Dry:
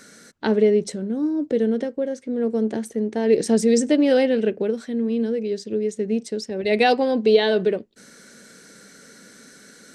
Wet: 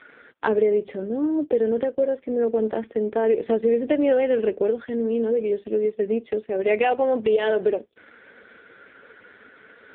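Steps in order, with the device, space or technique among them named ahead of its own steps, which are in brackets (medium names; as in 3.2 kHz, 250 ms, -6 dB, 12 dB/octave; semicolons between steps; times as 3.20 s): 1.39–2.00 s: high-pass 88 Hz 6 dB/octave; voicemail (band-pass 410–3200 Hz; compression 6:1, threshold -23 dBFS, peak gain reduction 10 dB; trim +7 dB; AMR-NB 5.15 kbps 8 kHz)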